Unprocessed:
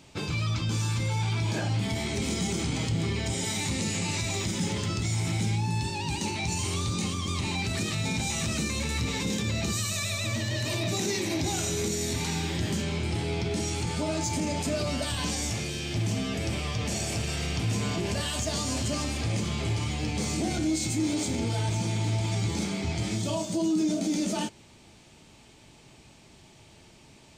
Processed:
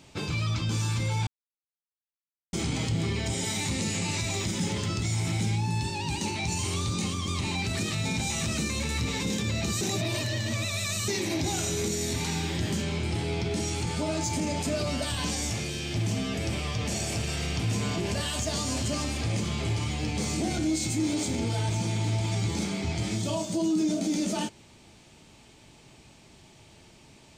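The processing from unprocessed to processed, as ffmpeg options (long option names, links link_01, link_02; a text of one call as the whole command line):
ffmpeg -i in.wav -filter_complex "[0:a]asplit=5[link_01][link_02][link_03][link_04][link_05];[link_01]atrim=end=1.27,asetpts=PTS-STARTPTS,afade=type=out:start_time=1.266:duration=0.004:curve=hsin[link_06];[link_02]atrim=start=1.27:end=2.53,asetpts=PTS-STARTPTS,volume=0[link_07];[link_03]atrim=start=2.53:end=9.812,asetpts=PTS-STARTPTS,afade=type=in:duration=0.004:curve=hsin[link_08];[link_04]atrim=start=9.808:end=11.082,asetpts=PTS-STARTPTS,areverse[link_09];[link_05]atrim=start=11.078[link_10];[link_06][link_07][link_08]concat=n=3:v=0:a=1[link_11];[link_11][link_09]acrossfade=duration=0.004:curve1=hsin:curve2=hsin[link_12];[link_12][link_10]acrossfade=duration=0.004:curve1=hsin:curve2=hsin" out.wav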